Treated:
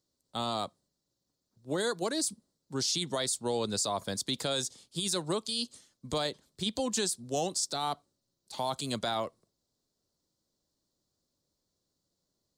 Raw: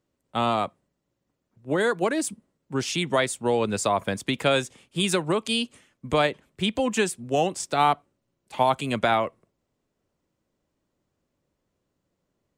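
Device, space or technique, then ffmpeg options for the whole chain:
over-bright horn tweeter: -af "highshelf=f=3300:t=q:w=3:g=9.5,alimiter=limit=0.211:level=0:latency=1:release=16,volume=0.422"

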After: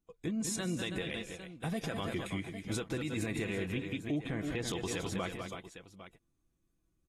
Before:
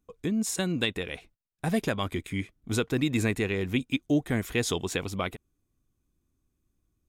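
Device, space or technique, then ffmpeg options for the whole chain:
low-bitrate web radio: -filter_complex "[0:a]asettb=1/sr,asplit=3[s0][s1][s2];[s0]atrim=end=3.724[s3];[s1]atrim=start=3.72:end=4.68,asetpts=PTS-STARTPTS,afade=t=in:d=0.004:c=qsin,afade=t=out:st=0.956:d=0.004:c=qsin,aemphasis=mode=reproduction:type=50fm[s4];[s2]atrim=start=4.676[s5];[s3][s4]acrossfade=d=0.004:c1=hsin:c2=qsin[s6];[s6][s5]acrossfade=d=0.004:c1=qsin:c2=hsin,aecho=1:1:6:0.33,aecho=1:1:199|325|804:0.266|0.251|0.126,dynaudnorm=f=160:g=5:m=1.68,alimiter=limit=0.126:level=0:latency=1:release=72,volume=0.376" -ar 44100 -c:a aac -b:a 32k

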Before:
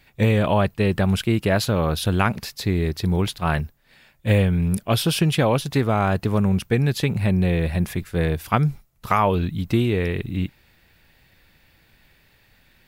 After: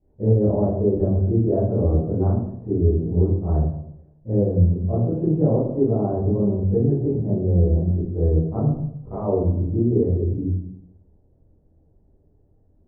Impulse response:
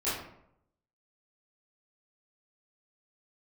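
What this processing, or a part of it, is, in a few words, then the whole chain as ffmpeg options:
next room: -filter_complex "[0:a]lowpass=f=580:w=0.5412,lowpass=f=580:w=1.3066[s0];[1:a]atrim=start_sample=2205[s1];[s0][s1]afir=irnorm=-1:irlink=0,volume=0.473"

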